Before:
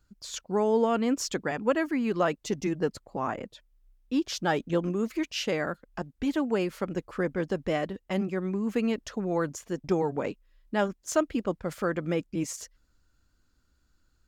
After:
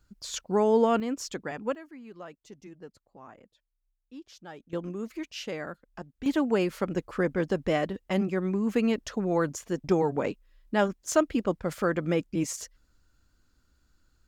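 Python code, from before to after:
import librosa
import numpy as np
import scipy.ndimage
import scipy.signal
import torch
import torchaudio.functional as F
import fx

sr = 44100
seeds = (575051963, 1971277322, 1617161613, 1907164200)

y = fx.gain(x, sr, db=fx.steps((0.0, 2.0), (1.0, -5.0), (1.75, -18.0), (4.73, -6.5), (6.26, 2.0)))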